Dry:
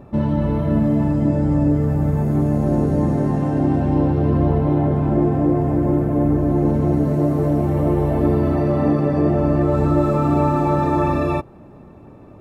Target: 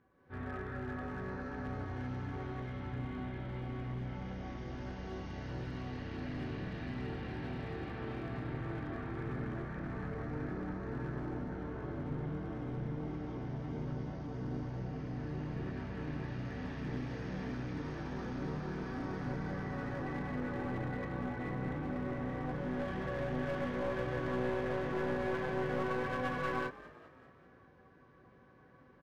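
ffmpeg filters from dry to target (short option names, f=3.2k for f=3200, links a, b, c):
-filter_complex "[0:a]asetrate=18846,aresample=44100,bandpass=f=1.7k:t=q:w=2.8:csg=0,aeval=exprs='clip(val(0),-1,0.00473)':c=same,asplit=6[a][b][c][d][e][f];[b]adelay=198,afreqshift=48,volume=-18dB[g];[c]adelay=396,afreqshift=96,volume=-23dB[h];[d]adelay=594,afreqshift=144,volume=-28.1dB[i];[e]adelay=792,afreqshift=192,volume=-33.1dB[j];[f]adelay=990,afreqshift=240,volume=-38.1dB[k];[a][g][h][i][j][k]amix=inputs=6:normalize=0,dynaudnorm=f=110:g=5:m=11dB,volume=-1.5dB"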